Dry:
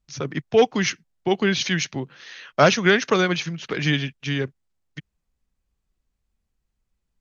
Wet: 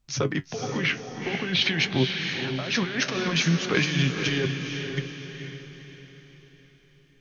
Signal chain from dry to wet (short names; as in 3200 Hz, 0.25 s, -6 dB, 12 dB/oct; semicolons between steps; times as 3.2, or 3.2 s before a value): 0.77–3.05 LPF 3300 Hz -> 5600 Hz 24 dB/oct; negative-ratio compressor -27 dBFS, ratio -1; flange 0.49 Hz, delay 7.7 ms, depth 6.9 ms, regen +57%; diffused feedback echo 0.478 s, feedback 45%, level -5.5 dB; gain +4.5 dB